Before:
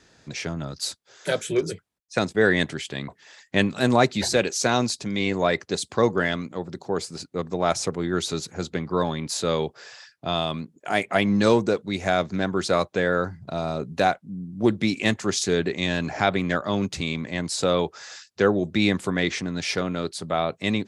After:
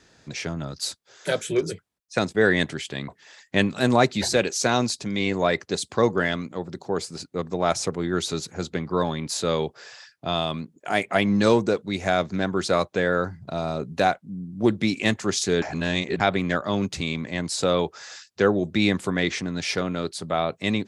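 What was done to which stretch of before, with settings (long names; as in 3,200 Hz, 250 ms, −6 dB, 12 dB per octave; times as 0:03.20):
0:15.62–0:16.20: reverse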